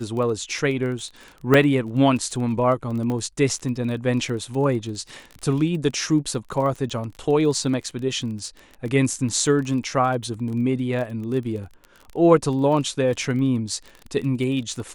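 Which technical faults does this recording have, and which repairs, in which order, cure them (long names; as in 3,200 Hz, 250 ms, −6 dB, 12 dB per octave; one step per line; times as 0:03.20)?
surface crackle 22 per second −30 dBFS
0:01.54: drop-out 2.8 ms
0:03.10: click −17 dBFS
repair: click removal
repair the gap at 0:01.54, 2.8 ms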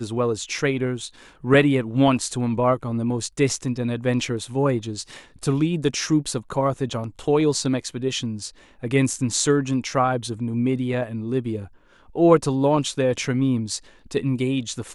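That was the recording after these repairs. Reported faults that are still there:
none of them is left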